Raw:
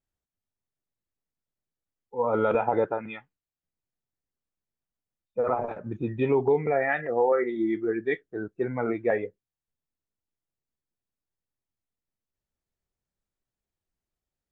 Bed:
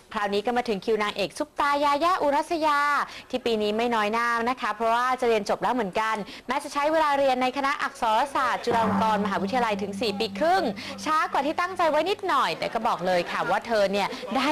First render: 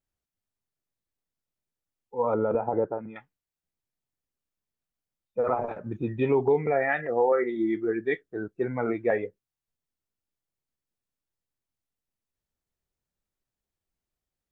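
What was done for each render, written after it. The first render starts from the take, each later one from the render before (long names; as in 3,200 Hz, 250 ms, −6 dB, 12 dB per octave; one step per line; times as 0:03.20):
0:02.34–0:03.16: Bessel low-pass filter 680 Hz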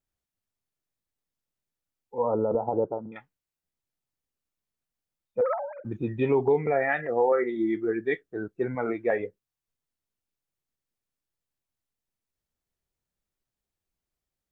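0:02.18–0:03.12: Butterworth low-pass 1,100 Hz
0:05.41–0:05.85: three sine waves on the formant tracks
0:08.75–0:09.20: low-shelf EQ 150 Hz −8.5 dB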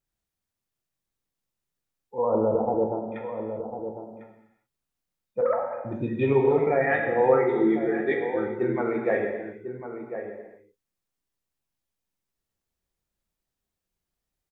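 slap from a distant wall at 180 metres, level −9 dB
reverb whose tail is shaped and stops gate 440 ms falling, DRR 1.5 dB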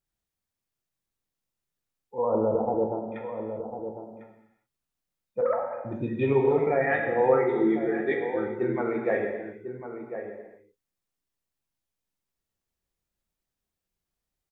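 level −1.5 dB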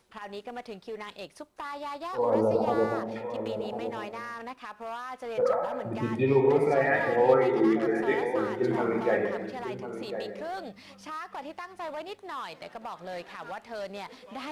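mix in bed −14.5 dB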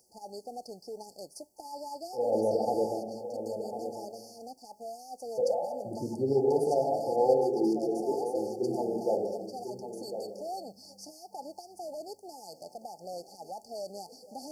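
brick-wall band-stop 880–4,400 Hz
spectral tilt +2.5 dB per octave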